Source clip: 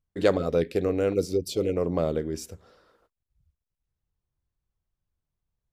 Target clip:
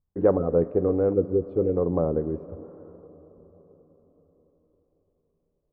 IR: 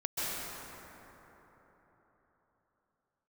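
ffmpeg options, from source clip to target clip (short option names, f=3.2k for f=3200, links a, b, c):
-filter_complex "[0:a]lowpass=f=1.1k:w=0.5412,lowpass=f=1.1k:w=1.3066,bandreject=f=640:w=12,asplit=2[a][b];[1:a]atrim=start_sample=2205,asetrate=36162,aresample=44100[c];[b][c]afir=irnorm=-1:irlink=0,volume=-25dB[d];[a][d]amix=inputs=2:normalize=0,volume=2dB"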